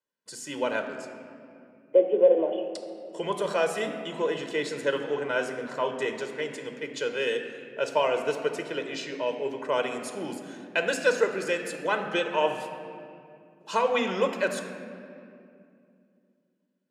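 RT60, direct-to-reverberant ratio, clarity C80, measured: 2.5 s, 5.5 dB, 8.0 dB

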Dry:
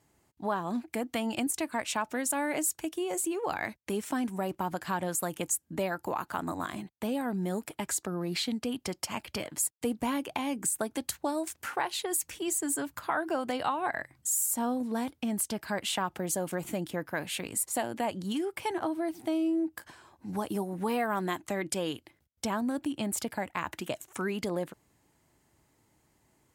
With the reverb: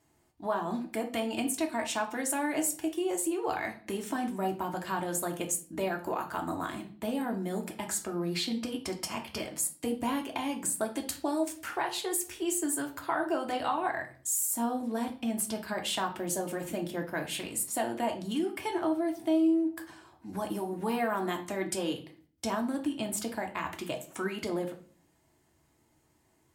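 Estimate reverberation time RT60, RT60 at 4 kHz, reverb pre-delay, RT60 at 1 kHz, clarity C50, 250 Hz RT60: 0.45 s, 0.40 s, 3 ms, 0.40 s, 11.5 dB, 0.70 s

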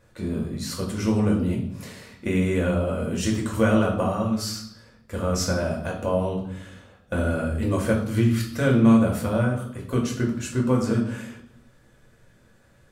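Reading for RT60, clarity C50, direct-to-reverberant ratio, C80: 0.70 s, 6.5 dB, -2.0 dB, 10.0 dB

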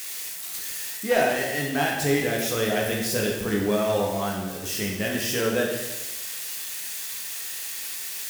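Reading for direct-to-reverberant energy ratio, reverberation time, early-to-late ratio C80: -2.0 dB, 1.1 s, 5.0 dB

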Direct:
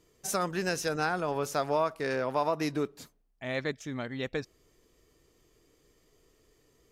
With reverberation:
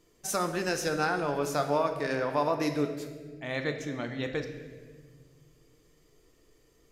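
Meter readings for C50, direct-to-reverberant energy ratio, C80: 8.0 dB, 5.0 dB, 9.5 dB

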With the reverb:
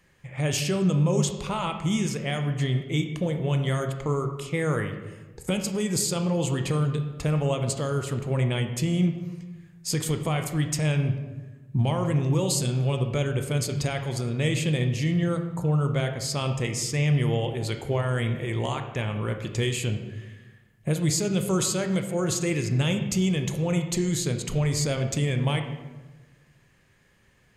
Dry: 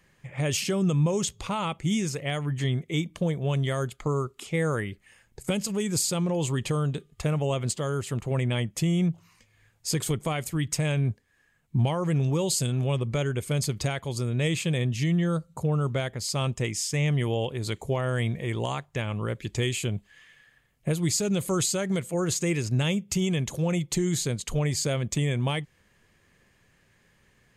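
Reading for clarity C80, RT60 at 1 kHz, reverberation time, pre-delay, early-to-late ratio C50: 9.5 dB, 1.1 s, 1.2 s, 19 ms, 7.5 dB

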